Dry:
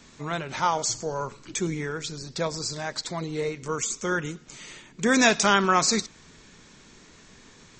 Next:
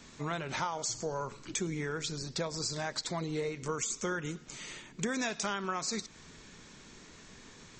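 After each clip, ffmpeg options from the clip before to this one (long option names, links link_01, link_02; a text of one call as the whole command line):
ffmpeg -i in.wav -af "acompressor=threshold=-29dB:ratio=12,volume=-1.5dB" out.wav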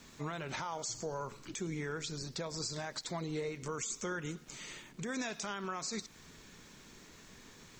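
ffmpeg -i in.wav -af "alimiter=level_in=2dB:limit=-24dB:level=0:latency=1:release=86,volume=-2dB,aeval=exprs='val(0)*gte(abs(val(0)),0.00112)':channel_layout=same,volume=-2.5dB" out.wav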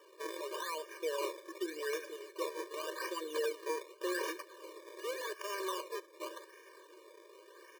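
ffmpeg -i in.wav -filter_complex "[0:a]acrossover=split=3400[link_01][link_02];[link_02]adelay=380[link_03];[link_01][link_03]amix=inputs=2:normalize=0,acrusher=samples=21:mix=1:aa=0.000001:lfo=1:lforange=21:lforate=0.87,afftfilt=real='re*eq(mod(floor(b*sr/1024/310),2),1)':imag='im*eq(mod(floor(b*sr/1024/310),2),1)':win_size=1024:overlap=0.75,volume=4.5dB" out.wav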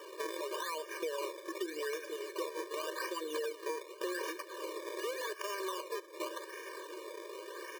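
ffmpeg -i in.wav -af "acompressor=threshold=-49dB:ratio=4,volume=11.5dB" out.wav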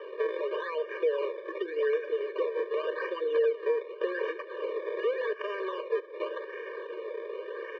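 ffmpeg -i in.wav -af "highpass=frequency=440:width=0.5412,highpass=frequency=440:width=1.3066,equalizer=frequency=450:width_type=q:width=4:gain=8,equalizer=frequency=660:width_type=q:width=4:gain=-3,equalizer=frequency=970:width_type=q:width=4:gain=-8,equalizer=frequency=1400:width_type=q:width=4:gain=-5,equalizer=frequency=2300:width_type=q:width=4:gain=-4,lowpass=frequency=2500:width=0.5412,lowpass=frequency=2500:width=1.3066,volume=8dB" out.wav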